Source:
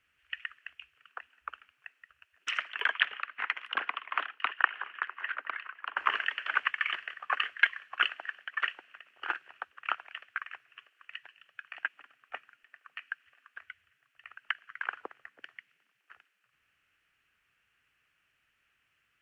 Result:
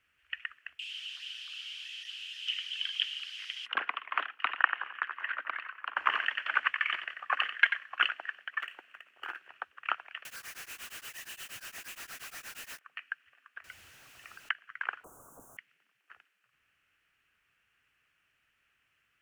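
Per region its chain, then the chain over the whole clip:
0.79–3.66 s: jump at every zero crossing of -30 dBFS + ladder band-pass 3.3 kHz, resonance 80% + peaking EQ 5 kHz +4 dB 0.31 oct
4.30–8.11 s: peaking EQ 410 Hz -5.5 dB 0.25 oct + delay 90 ms -9.5 dB
8.62–9.47 s: median filter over 5 samples + peaking EQ 130 Hz -6.5 dB 0.25 oct + compression 12:1, threshold -34 dBFS
10.25–12.79 s: one-bit comparator + treble shelf 5.6 kHz +8 dB + tremolo of two beating tones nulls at 8.5 Hz
13.64–14.49 s: jump at every zero crossing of -48.5 dBFS + peaking EQ 1.8 kHz -5.5 dB 0.9 oct
15.04–15.57 s: one-bit comparator + inverse Chebyshev band-stop 1.8–4.8 kHz
whole clip: none

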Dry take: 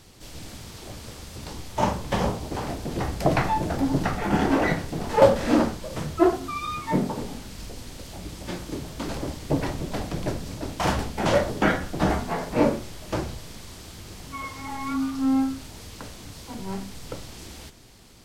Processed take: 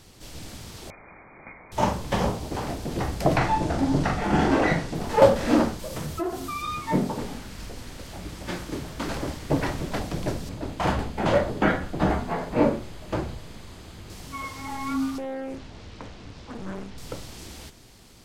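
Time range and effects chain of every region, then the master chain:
0.90–1.72 s: rippled Chebyshev high-pass 570 Hz, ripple 6 dB + treble shelf 2.3 kHz +10.5 dB + frequency inversion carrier 3 kHz
3.37–4.95 s: low-pass 9.2 kHz + doubling 42 ms -5.5 dB
5.79–6.62 s: treble shelf 9.8 kHz +10 dB + compression 3:1, threshold -27 dBFS
7.18–9.99 s: peaking EQ 1.6 kHz +5 dB 1.5 oct + tape noise reduction on one side only decoder only
10.49–14.10 s: treble shelf 4.5 kHz -10 dB + band-stop 5.6 kHz
15.18–16.98 s: compression 8:1, threshold -27 dBFS + distance through air 160 m + loudspeaker Doppler distortion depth 1 ms
whole clip: none

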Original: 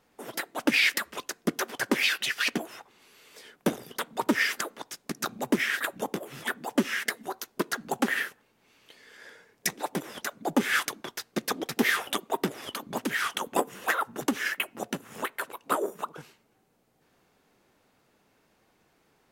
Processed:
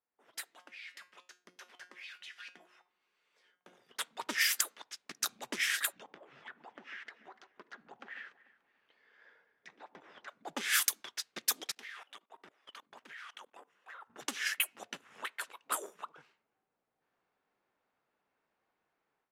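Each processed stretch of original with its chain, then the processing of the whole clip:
0.55–3.89 s: compression 5:1, threshold -31 dBFS + treble shelf 3.7 kHz +4 dB + feedback comb 180 Hz, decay 0.35 s, mix 70%
5.92–10.28 s: compression, threshold -33 dBFS + distance through air 100 m + echo whose repeats swap between lows and highs 146 ms, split 1.1 kHz, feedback 57%, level -11.5 dB
11.71–14.10 s: bass shelf 310 Hz -7.5 dB + level held to a coarse grid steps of 20 dB
whole clip: pre-emphasis filter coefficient 0.97; level-controlled noise filter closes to 1.2 kHz, open at -31.5 dBFS; level rider gain up to 14 dB; trim -7.5 dB

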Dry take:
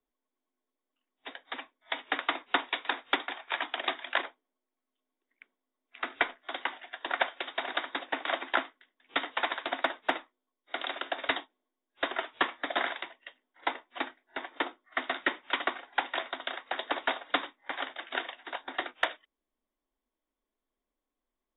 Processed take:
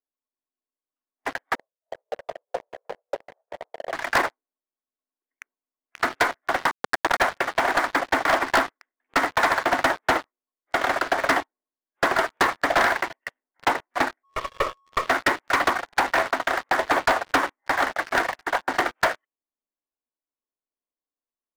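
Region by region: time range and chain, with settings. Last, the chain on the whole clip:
1.55–3.93 s: Butterworth band-pass 520 Hz, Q 3.1 + tilt EQ +4 dB/octave
6.71–7.22 s: small samples zeroed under -35 dBFS + three bands compressed up and down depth 100%
14.23–15.06 s: comb filter that takes the minimum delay 1.7 ms + whistle 1.1 kHz -52 dBFS + static phaser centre 1.1 kHz, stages 8
whole clip: low-pass 1.9 kHz 24 dB/octave; bass shelf 180 Hz -11 dB; waveshaping leveller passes 5

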